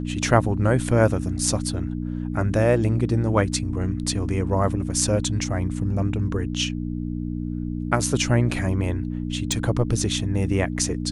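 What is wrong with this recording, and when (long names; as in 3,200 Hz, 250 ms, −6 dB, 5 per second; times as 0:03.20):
mains hum 60 Hz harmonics 5 −28 dBFS
0:09.52: click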